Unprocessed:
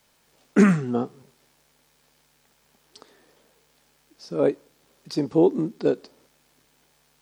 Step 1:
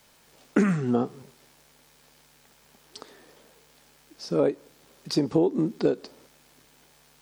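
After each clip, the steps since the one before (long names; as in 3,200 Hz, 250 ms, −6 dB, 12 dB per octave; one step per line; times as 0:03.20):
downward compressor 6 to 1, threshold −24 dBFS, peak gain reduction 13 dB
level +5 dB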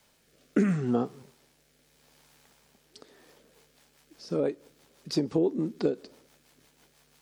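rotating-speaker cabinet horn 0.75 Hz, later 6 Hz, at 0:02.97
level −2 dB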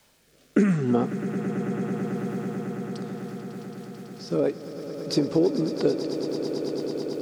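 echo that builds up and dies away 110 ms, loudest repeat 8, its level −13 dB
level +4 dB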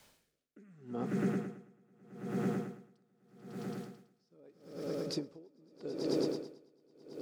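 tremolo with a sine in dB 0.81 Hz, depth 37 dB
level −2 dB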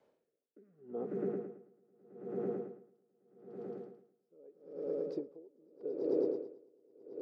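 resonant band-pass 450 Hz, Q 2.4
level +3.5 dB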